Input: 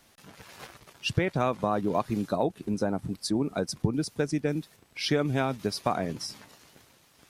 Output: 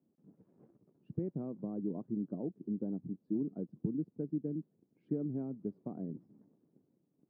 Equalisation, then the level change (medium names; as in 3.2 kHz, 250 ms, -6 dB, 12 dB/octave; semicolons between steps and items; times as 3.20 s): Butterworth band-pass 240 Hz, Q 1.1; distance through air 160 m; -6.0 dB